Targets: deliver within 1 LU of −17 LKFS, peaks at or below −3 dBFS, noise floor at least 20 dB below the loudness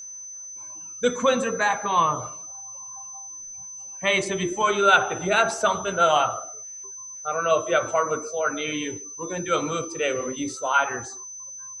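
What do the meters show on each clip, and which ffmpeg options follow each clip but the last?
interfering tone 6,100 Hz; level of the tone −36 dBFS; integrated loudness −23.5 LKFS; sample peak −4.5 dBFS; target loudness −17.0 LKFS
→ -af "bandreject=frequency=6100:width=30"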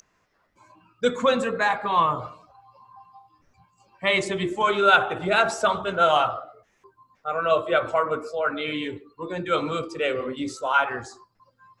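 interfering tone none found; integrated loudness −23.5 LKFS; sample peak −4.5 dBFS; target loudness −17.0 LKFS
→ -af "volume=6.5dB,alimiter=limit=-3dB:level=0:latency=1"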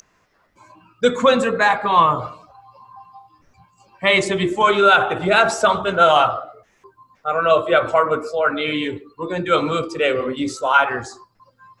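integrated loudness −17.5 LKFS; sample peak −3.0 dBFS; background noise floor −62 dBFS

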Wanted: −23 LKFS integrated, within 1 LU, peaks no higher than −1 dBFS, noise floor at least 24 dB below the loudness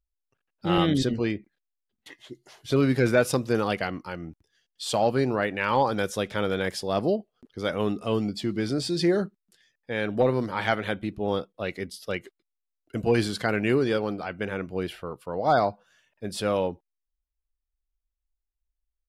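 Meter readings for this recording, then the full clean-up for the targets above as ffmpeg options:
integrated loudness −27.0 LKFS; sample peak −9.5 dBFS; target loudness −23.0 LKFS
→ -af "volume=4dB"

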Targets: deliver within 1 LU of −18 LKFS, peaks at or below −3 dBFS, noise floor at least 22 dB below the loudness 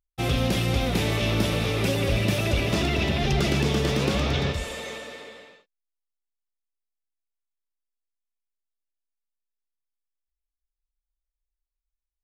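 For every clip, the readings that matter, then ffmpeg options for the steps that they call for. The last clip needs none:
integrated loudness −24.5 LKFS; sample peak −10.5 dBFS; target loudness −18.0 LKFS
→ -af "volume=6.5dB"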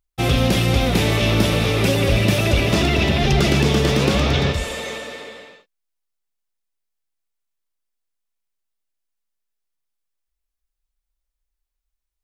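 integrated loudness −18.0 LKFS; sample peak −4.0 dBFS; background noise floor −81 dBFS

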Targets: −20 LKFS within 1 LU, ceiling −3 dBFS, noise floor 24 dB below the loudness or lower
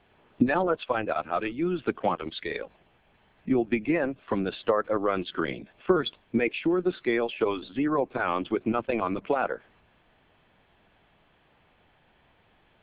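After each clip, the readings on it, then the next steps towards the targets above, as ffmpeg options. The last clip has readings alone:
integrated loudness −28.0 LKFS; sample peak −8.5 dBFS; target loudness −20.0 LKFS
→ -af "volume=8dB,alimiter=limit=-3dB:level=0:latency=1"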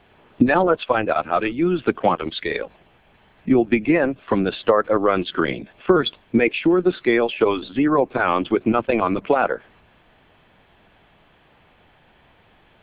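integrated loudness −20.0 LKFS; sample peak −3.0 dBFS; background noise floor −56 dBFS

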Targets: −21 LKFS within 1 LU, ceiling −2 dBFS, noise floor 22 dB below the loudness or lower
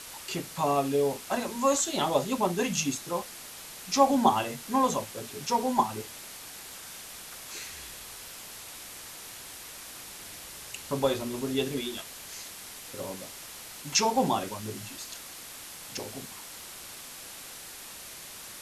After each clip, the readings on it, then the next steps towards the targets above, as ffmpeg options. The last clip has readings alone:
background noise floor −44 dBFS; target noise floor −54 dBFS; integrated loudness −31.5 LKFS; sample peak −9.0 dBFS; target loudness −21.0 LKFS
→ -af "afftdn=noise_reduction=10:noise_floor=-44"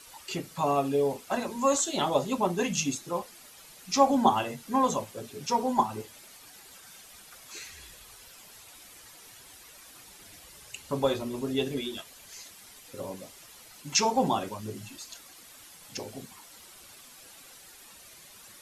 background noise floor −52 dBFS; integrated loudness −29.0 LKFS; sample peak −9.0 dBFS; target loudness −21.0 LKFS
→ -af "volume=8dB,alimiter=limit=-2dB:level=0:latency=1"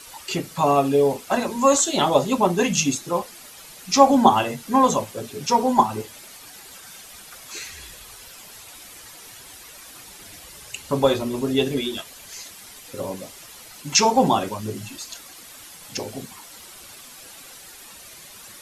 integrated loudness −21.0 LKFS; sample peak −2.0 dBFS; background noise floor −44 dBFS

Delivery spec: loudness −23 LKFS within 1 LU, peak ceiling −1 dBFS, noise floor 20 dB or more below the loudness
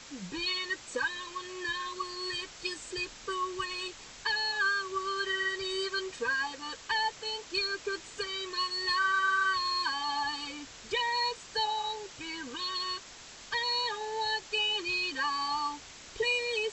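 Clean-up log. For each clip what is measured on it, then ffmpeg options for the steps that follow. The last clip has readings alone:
background noise floor −49 dBFS; target noise floor −52 dBFS; integrated loudness −31.5 LKFS; sample peak −18.5 dBFS; target loudness −23.0 LKFS
→ -af "afftdn=noise_reduction=6:noise_floor=-49"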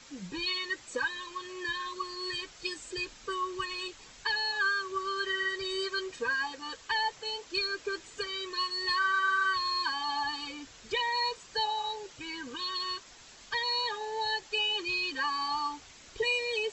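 background noise floor −53 dBFS; integrated loudness −32.0 LKFS; sample peak −18.5 dBFS; target loudness −23.0 LKFS
→ -af "volume=9dB"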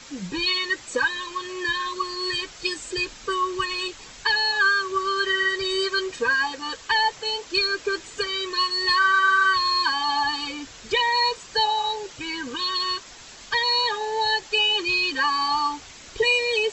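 integrated loudness −23.0 LKFS; sample peak −9.5 dBFS; background noise floor −44 dBFS

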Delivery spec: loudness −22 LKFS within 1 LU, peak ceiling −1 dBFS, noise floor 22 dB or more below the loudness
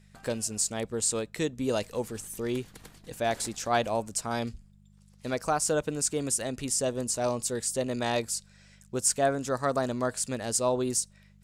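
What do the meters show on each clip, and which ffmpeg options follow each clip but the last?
mains hum 50 Hz; hum harmonics up to 200 Hz; level of the hum −56 dBFS; integrated loudness −29.5 LKFS; sample peak −12.0 dBFS; target loudness −22.0 LKFS
→ -af "bandreject=frequency=50:width_type=h:width=4,bandreject=frequency=100:width_type=h:width=4,bandreject=frequency=150:width_type=h:width=4,bandreject=frequency=200:width_type=h:width=4"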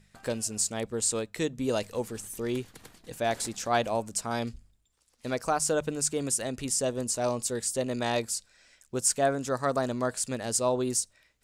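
mains hum none found; integrated loudness −29.5 LKFS; sample peak −12.0 dBFS; target loudness −22.0 LKFS
→ -af "volume=7.5dB"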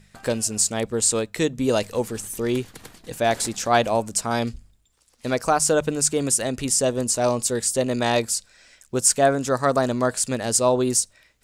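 integrated loudness −22.0 LKFS; sample peak −4.5 dBFS; background noise floor −61 dBFS

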